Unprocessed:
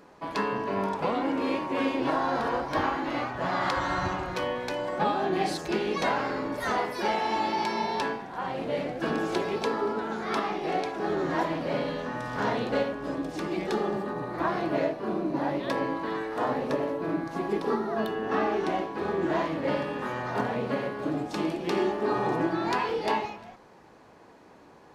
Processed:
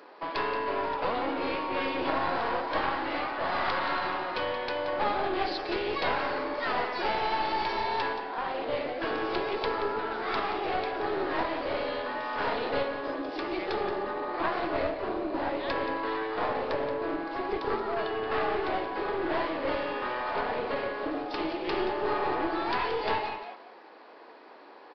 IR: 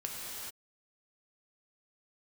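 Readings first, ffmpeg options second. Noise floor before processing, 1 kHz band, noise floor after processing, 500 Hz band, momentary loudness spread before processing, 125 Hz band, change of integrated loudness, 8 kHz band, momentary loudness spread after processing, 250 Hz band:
-53 dBFS, -0.5 dB, -50 dBFS, -1.5 dB, 4 LU, -9.0 dB, -1.5 dB, under -15 dB, 4 LU, -5.5 dB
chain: -filter_complex "[0:a]highpass=f=300:w=0.5412,highpass=f=300:w=1.3066,lowshelf=f=450:g=-4,asplit=2[a][b];[b]acompressor=threshold=-38dB:ratio=6,volume=-2.5dB[c];[a][c]amix=inputs=2:normalize=0,aeval=exprs='clip(val(0),-1,0.0282)':c=same,aecho=1:1:177:0.299,aresample=11025,aresample=44100"

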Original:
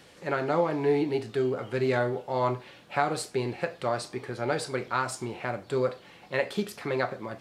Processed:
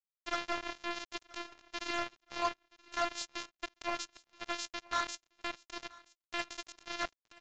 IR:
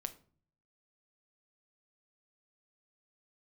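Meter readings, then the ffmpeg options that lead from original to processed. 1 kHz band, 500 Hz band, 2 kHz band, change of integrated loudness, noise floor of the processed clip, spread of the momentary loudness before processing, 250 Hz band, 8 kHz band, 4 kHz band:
-7.5 dB, -17.0 dB, -6.0 dB, -9.5 dB, under -85 dBFS, 7 LU, -15.0 dB, -3.5 dB, +0.5 dB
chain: -filter_complex "[0:a]highpass=190,acrossover=split=390 5100:gain=0.112 1 0.2[a][b][c];[a][b][c]amix=inputs=3:normalize=0,afftfilt=real='hypot(re,im)*cos(PI*b)':imag='0':win_size=512:overlap=0.75,asoftclip=type=tanh:threshold=-19.5dB,flanger=delay=0.7:depth=7.9:regen=-85:speed=0.67:shape=sinusoidal,crystalizer=i=4.5:c=0,acrusher=bits=4:mix=0:aa=0.5,aecho=1:1:976|1952:0.0708|0.0198,aresample=16000,aresample=44100,volume=1dB"

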